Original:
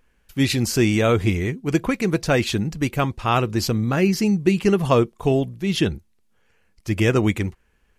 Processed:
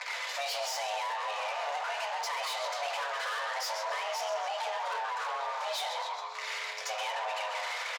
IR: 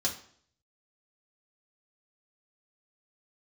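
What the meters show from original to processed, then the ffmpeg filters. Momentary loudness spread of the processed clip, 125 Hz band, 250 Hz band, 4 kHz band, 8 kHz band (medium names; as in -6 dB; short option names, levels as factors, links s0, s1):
2 LU, under -40 dB, under -40 dB, -5.5 dB, -8.0 dB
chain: -filter_complex "[0:a]aeval=exprs='val(0)+0.5*0.0708*sgn(val(0))':c=same,asplit=5[s0][s1][s2][s3][s4];[s1]adelay=134,afreqshift=99,volume=0.335[s5];[s2]adelay=268,afreqshift=198,volume=0.138[s6];[s3]adelay=402,afreqshift=297,volume=0.0562[s7];[s4]adelay=536,afreqshift=396,volume=0.0232[s8];[s0][s5][s6][s7][s8]amix=inputs=5:normalize=0,acompressor=threshold=0.112:ratio=10,lowpass=9500,acrossover=split=410 4200:gain=0.0891 1 0.2[s9][s10][s11];[s9][s10][s11]amix=inputs=3:normalize=0,bandreject=f=50:t=h:w=6,bandreject=f=100:t=h:w=6[s12];[1:a]atrim=start_sample=2205[s13];[s12][s13]afir=irnorm=-1:irlink=0,asoftclip=type=tanh:threshold=0.0473,acrossover=split=240[s14][s15];[s15]acompressor=threshold=0.0178:ratio=2[s16];[s14][s16]amix=inputs=2:normalize=0,afreqshift=430,volume=0.891"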